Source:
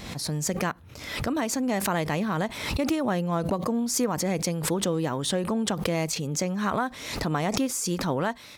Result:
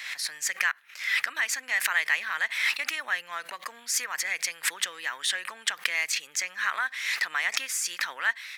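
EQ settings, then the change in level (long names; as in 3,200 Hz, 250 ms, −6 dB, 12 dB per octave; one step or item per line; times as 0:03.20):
high-pass with resonance 1,800 Hz, resonance Q 3.7
parametric band 2,600 Hz +2.5 dB
0.0 dB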